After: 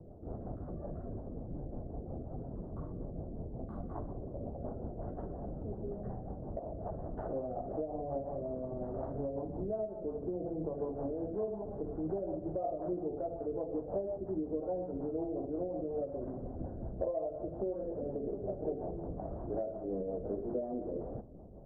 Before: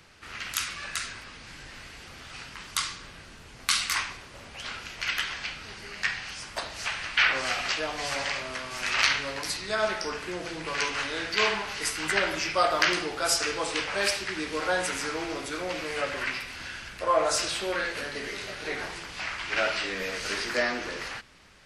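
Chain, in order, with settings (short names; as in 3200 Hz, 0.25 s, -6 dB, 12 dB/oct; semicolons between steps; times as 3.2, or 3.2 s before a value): elliptic low-pass 690 Hz, stop band 70 dB; compressor 5:1, threshold -44 dBFS, peak gain reduction 21.5 dB; rotary speaker horn 5.5 Hz; gain +11 dB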